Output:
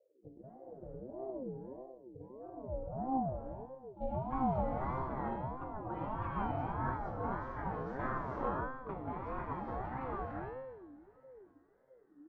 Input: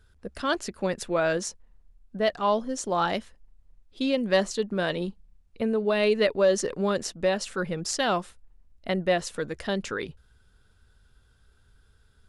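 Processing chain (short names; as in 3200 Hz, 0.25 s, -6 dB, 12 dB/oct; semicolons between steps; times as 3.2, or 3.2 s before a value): high shelf 6600 Hz -10.5 dB; notches 60/120/180/240/300/360/420/480/540/600 Hz; compressor 3:1, threshold -27 dBFS, peak gain reduction 8 dB; harmoniser -5 st -16 dB, -4 st -6 dB, +12 st -17 dB; low-pass sweep 140 Hz -> 910 Hz, 2.23–4.43; resonator 130 Hz, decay 0.9 s, harmonics all, mix 90%; feedback echo 0.338 s, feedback 59%, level -22 dB; non-linear reverb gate 0.48 s rising, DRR -3.5 dB; ring modulator with a swept carrier 410 Hz, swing 30%, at 1.6 Hz; gain +2.5 dB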